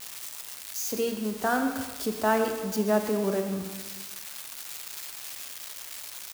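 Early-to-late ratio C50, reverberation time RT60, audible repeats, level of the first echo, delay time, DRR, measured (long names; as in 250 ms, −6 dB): 6.0 dB, 1.4 s, 1, −11.5 dB, 132 ms, 4.5 dB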